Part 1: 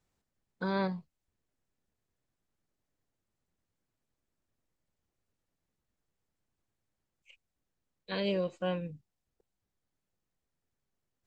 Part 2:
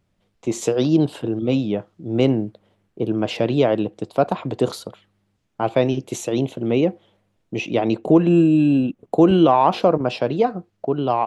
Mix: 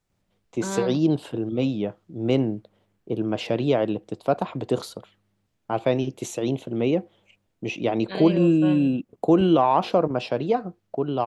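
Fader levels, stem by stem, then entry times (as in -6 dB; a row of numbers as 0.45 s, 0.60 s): +1.5 dB, -4.0 dB; 0.00 s, 0.10 s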